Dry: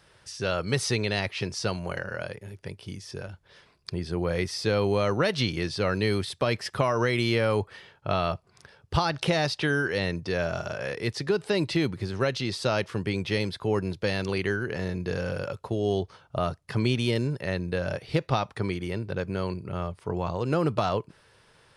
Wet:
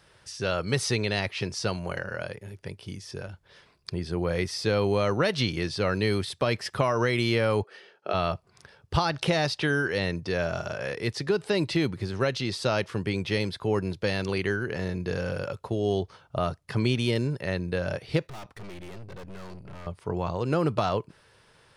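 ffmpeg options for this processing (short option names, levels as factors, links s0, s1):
-filter_complex "[0:a]asplit=3[s0][s1][s2];[s0]afade=t=out:st=7.62:d=0.02[s3];[s1]highpass=f=250:w=0.5412,highpass=f=250:w=1.3066,equalizer=f=270:t=q:w=4:g=-7,equalizer=f=400:t=q:w=4:g=5,equalizer=f=1000:t=q:w=4:g=-9,equalizer=f=2100:t=q:w=4:g=-4,equalizer=f=3600:t=q:w=4:g=-5,equalizer=f=7400:t=q:w=4:g=-8,lowpass=f=9300:w=0.5412,lowpass=f=9300:w=1.3066,afade=t=in:st=7.62:d=0.02,afade=t=out:st=8.13:d=0.02[s4];[s2]afade=t=in:st=8.13:d=0.02[s5];[s3][s4][s5]amix=inputs=3:normalize=0,asettb=1/sr,asplit=3[s6][s7][s8];[s6]atrim=end=18.274[s9];[s7]atrim=start=18.27:end=19.87,asetpts=PTS-STARTPTS,afade=t=in:d=0.004:c=qsin,afade=t=out:st=1.596:d=0.004:c=qsin,aeval=exprs='(tanh(100*val(0)+0.75)-tanh(0.75))/100':c=same[s10];[s8]atrim=start=19.866[s11];[s9][s10]acrossfade=d=0.004:c1=hsin:c2=qsin[s12];[s12][s11]acrossfade=d=0.004:c1=qsin:c2=hsin"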